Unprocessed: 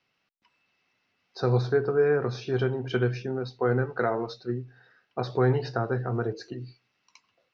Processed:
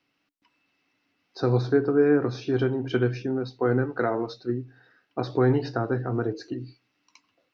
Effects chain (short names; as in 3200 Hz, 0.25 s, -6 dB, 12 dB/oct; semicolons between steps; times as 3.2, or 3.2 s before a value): bell 290 Hz +15 dB 0.27 oct